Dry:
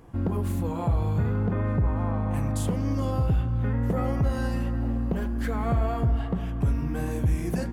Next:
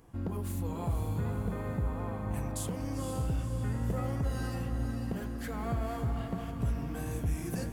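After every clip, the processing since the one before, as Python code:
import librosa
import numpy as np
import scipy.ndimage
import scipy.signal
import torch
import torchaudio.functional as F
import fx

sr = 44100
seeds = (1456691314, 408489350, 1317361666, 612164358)

y = fx.high_shelf(x, sr, hz=3800.0, db=9.0)
y = fx.echo_diffused(y, sr, ms=500, feedback_pct=49, wet_db=-6.5)
y = y * 10.0 ** (-8.5 / 20.0)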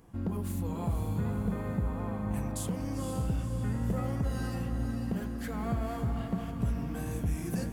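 y = fx.peak_eq(x, sr, hz=200.0, db=6.5, octaves=0.41)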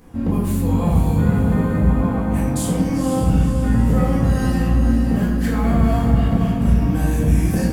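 y = fx.room_shoebox(x, sr, seeds[0], volume_m3=310.0, walls='mixed', distance_m=2.0)
y = y * 10.0 ** (7.5 / 20.0)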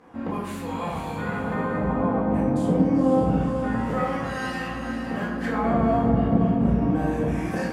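y = fx.filter_lfo_bandpass(x, sr, shape='sine', hz=0.27, low_hz=430.0, high_hz=1900.0, q=0.72)
y = y * 10.0 ** (2.5 / 20.0)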